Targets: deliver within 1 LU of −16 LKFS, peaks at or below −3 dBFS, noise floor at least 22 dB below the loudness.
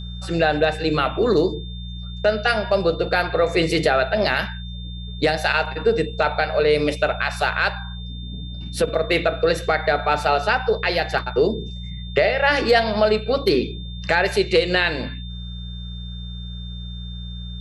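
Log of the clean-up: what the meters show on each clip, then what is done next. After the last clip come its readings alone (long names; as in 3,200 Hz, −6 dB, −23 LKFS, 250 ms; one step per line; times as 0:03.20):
mains hum 60 Hz; hum harmonics up to 180 Hz; level of the hum −30 dBFS; interfering tone 3,600 Hz; level of the tone −39 dBFS; integrated loudness −20.5 LKFS; sample peak −4.5 dBFS; target loudness −16.0 LKFS
→ hum removal 60 Hz, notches 3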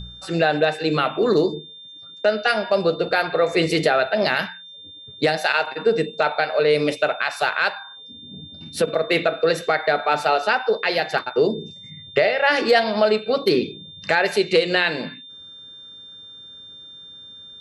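mains hum none found; interfering tone 3,600 Hz; level of the tone −39 dBFS
→ notch filter 3,600 Hz, Q 30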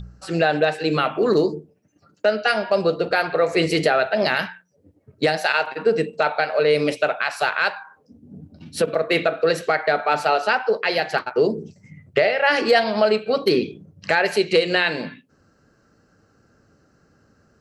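interfering tone none found; integrated loudness −20.5 LKFS; sample peak −5.0 dBFS; target loudness −16.0 LKFS
→ level +4.5 dB
brickwall limiter −3 dBFS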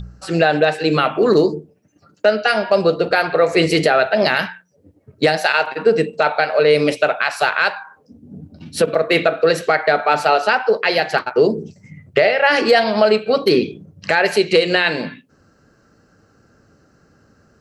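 integrated loudness −16.5 LKFS; sample peak −3.0 dBFS; background noise floor −57 dBFS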